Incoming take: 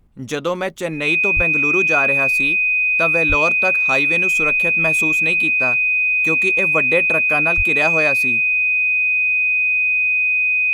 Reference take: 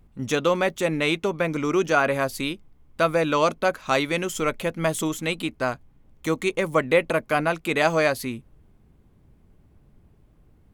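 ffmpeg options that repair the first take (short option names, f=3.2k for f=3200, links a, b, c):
-filter_complex "[0:a]bandreject=f=2.5k:w=30,asplit=3[a][b][c];[a]afade=t=out:st=1.35:d=0.02[d];[b]highpass=f=140:w=0.5412,highpass=f=140:w=1.3066,afade=t=in:st=1.35:d=0.02,afade=t=out:st=1.47:d=0.02[e];[c]afade=t=in:st=1.47:d=0.02[f];[d][e][f]amix=inputs=3:normalize=0,asplit=3[g][h][i];[g]afade=t=out:st=3.28:d=0.02[j];[h]highpass=f=140:w=0.5412,highpass=f=140:w=1.3066,afade=t=in:st=3.28:d=0.02,afade=t=out:st=3.4:d=0.02[k];[i]afade=t=in:st=3.4:d=0.02[l];[j][k][l]amix=inputs=3:normalize=0,asplit=3[m][n][o];[m]afade=t=out:st=7.56:d=0.02[p];[n]highpass=f=140:w=0.5412,highpass=f=140:w=1.3066,afade=t=in:st=7.56:d=0.02,afade=t=out:st=7.68:d=0.02[q];[o]afade=t=in:st=7.68:d=0.02[r];[p][q][r]amix=inputs=3:normalize=0"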